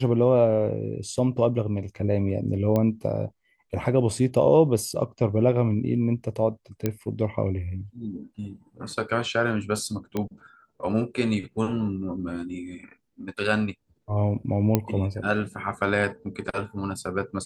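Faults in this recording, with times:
2.76 s: pop -13 dBFS
6.86 s: pop -11 dBFS
10.17 s: pop -15 dBFS
14.75 s: pop -7 dBFS

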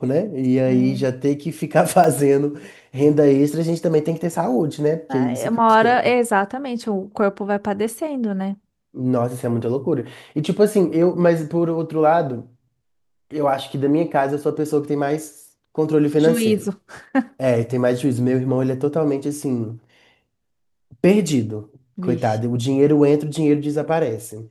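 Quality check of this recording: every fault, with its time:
2.04 s: dropout 2.9 ms

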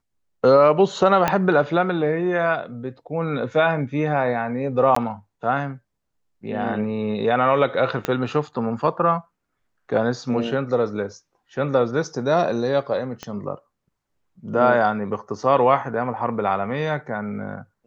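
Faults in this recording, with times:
1.28 s: pop -5 dBFS
4.95–4.96 s: dropout 14 ms
8.05 s: pop -9 dBFS
13.23 s: pop -16 dBFS

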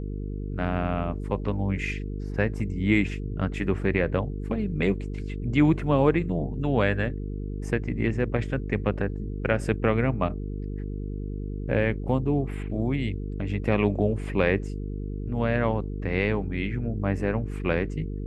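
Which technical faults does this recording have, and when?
buzz 50 Hz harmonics 9 -32 dBFS

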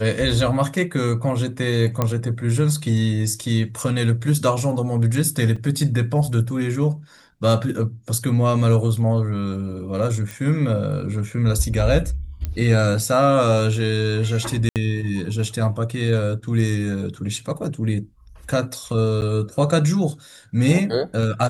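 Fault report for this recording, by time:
2.02 s: pop -7 dBFS
5.56 s: dropout 4.4 ms
10.31 s: pop
12.45 s: pop -14 dBFS
14.69–14.76 s: dropout 68 ms
19.21–19.22 s: dropout 9.1 ms

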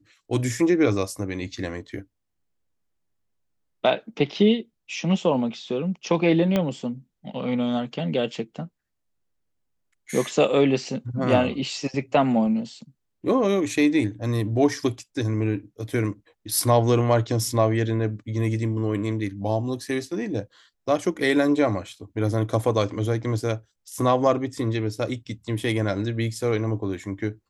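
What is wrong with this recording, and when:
6.56 s: pop -10 dBFS

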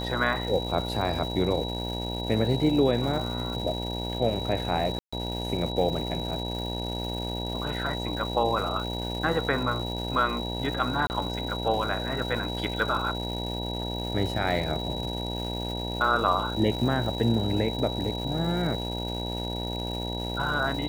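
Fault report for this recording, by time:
buzz 60 Hz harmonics 16 -33 dBFS
crackle 420 per s -35 dBFS
whine 3.9 kHz -35 dBFS
4.99–5.12 s: dropout 135 ms
11.07–11.10 s: dropout 29 ms

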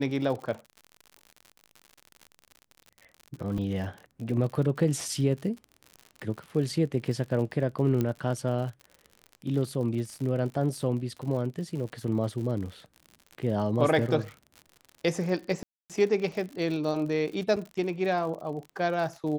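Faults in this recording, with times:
crackle 65 per s -36 dBFS
3.58 s: dropout 3.4 ms
8.01 s: pop -15 dBFS
15.63–15.90 s: dropout 267 ms
17.56–17.57 s: dropout 5.1 ms

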